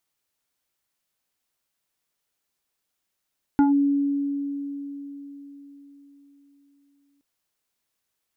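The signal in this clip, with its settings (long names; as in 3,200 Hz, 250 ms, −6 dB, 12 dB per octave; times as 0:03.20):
two-operator FM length 3.62 s, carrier 282 Hz, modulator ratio 2.02, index 1, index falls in 0.14 s linear, decay 4.33 s, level −14 dB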